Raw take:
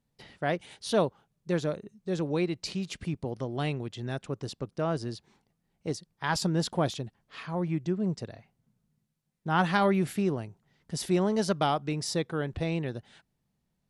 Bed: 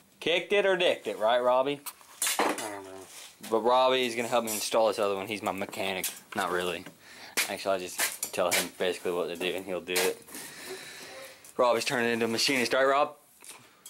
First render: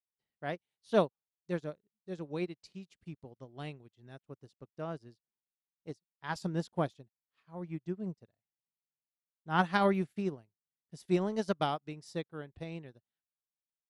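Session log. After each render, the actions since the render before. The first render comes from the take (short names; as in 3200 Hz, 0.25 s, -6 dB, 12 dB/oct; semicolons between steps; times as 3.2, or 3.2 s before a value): upward expander 2.5:1, over -48 dBFS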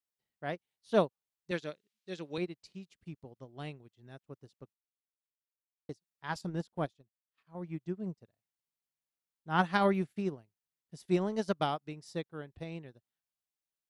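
1.51–2.38 weighting filter D; 4.73–5.89 mute; 6.41–7.55 transient shaper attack -5 dB, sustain -10 dB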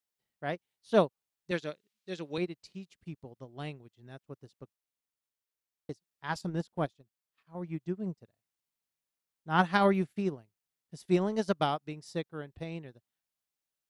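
gain +2.5 dB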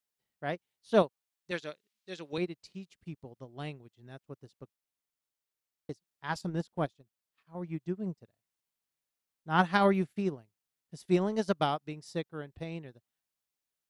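1.02–2.33 low shelf 470 Hz -7 dB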